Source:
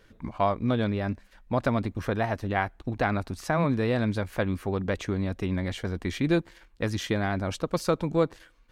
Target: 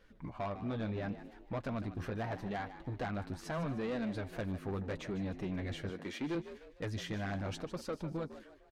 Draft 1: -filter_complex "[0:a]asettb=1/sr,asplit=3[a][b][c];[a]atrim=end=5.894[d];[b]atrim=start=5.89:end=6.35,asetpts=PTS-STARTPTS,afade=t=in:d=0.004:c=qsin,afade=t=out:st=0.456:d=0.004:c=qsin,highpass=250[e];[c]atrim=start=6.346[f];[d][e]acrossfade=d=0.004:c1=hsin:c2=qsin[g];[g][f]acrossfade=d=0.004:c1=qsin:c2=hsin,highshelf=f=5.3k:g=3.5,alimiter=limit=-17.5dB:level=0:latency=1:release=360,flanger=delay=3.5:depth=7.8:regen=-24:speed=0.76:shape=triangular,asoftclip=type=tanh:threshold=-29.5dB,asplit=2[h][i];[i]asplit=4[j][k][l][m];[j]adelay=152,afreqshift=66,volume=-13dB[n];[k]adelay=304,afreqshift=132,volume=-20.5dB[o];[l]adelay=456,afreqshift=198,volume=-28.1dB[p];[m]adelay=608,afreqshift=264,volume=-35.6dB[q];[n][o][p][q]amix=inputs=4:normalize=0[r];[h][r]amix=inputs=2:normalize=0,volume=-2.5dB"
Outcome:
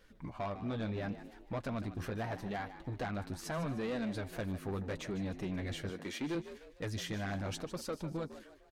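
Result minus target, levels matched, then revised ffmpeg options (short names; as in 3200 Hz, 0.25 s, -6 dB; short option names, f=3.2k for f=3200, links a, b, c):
8000 Hz band +5.5 dB
-filter_complex "[0:a]asettb=1/sr,asplit=3[a][b][c];[a]atrim=end=5.894[d];[b]atrim=start=5.89:end=6.35,asetpts=PTS-STARTPTS,afade=t=in:d=0.004:c=qsin,afade=t=out:st=0.456:d=0.004:c=qsin,highpass=250[e];[c]atrim=start=6.346[f];[d][e]acrossfade=d=0.004:c1=hsin:c2=qsin[g];[g][f]acrossfade=d=0.004:c1=qsin:c2=hsin,highshelf=f=5.3k:g=-6.5,alimiter=limit=-17.5dB:level=0:latency=1:release=360,flanger=delay=3.5:depth=7.8:regen=-24:speed=0.76:shape=triangular,asoftclip=type=tanh:threshold=-29.5dB,asplit=2[h][i];[i]asplit=4[j][k][l][m];[j]adelay=152,afreqshift=66,volume=-13dB[n];[k]adelay=304,afreqshift=132,volume=-20.5dB[o];[l]adelay=456,afreqshift=198,volume=-28.1dB[p];[m]adelay=608,afreqshift=264,volume=-35.6dB[q];[n][o][p][q]amix=inputs=4:normalize=0[r];[h][r]amix=inputs=2:normalize=0,volume=-2.5dB"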